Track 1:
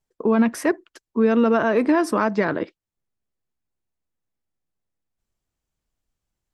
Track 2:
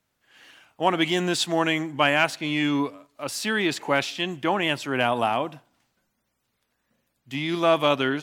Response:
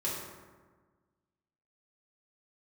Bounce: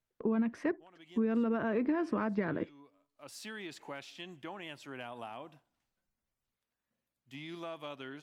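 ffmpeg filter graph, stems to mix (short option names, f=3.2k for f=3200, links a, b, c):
-filter_complex "[0:a]agate=range=-7dB:threshold=-37dB:ratio=16:detection=peak,lowpass=2.2k,equalizer=f=840:t=o:w=2.9:g=-9.5,volume=-3.5dB,asplit=2[a][b];[1:a]acompressor=threshold=-25dB:ratio=3,volume=-16dB[c];[b]apad=whole_len=362778[d];[c][d]sidechaincompress=threshold=-47dB:ratio=5:attack=24:release=614[e];[a][e]amix=inputs=2:normalize=0,acompressor=threshold=-27dB:ratio=6"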